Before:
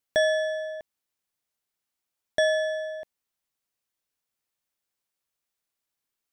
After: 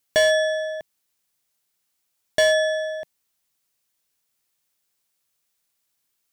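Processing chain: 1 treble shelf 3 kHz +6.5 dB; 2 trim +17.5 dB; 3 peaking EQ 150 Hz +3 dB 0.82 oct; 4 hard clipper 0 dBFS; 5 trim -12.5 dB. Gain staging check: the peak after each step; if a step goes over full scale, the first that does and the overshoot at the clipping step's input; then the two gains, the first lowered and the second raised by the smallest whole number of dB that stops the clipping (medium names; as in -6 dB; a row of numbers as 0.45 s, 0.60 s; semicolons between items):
-10.0 dBFS, +7.5 dBFS, +7.5 dBFS, 0.0 dBFS, -12.5 dBFS; step 2, 7.5 dB; step 2 +9.5 dB, step 5 -4.5 dB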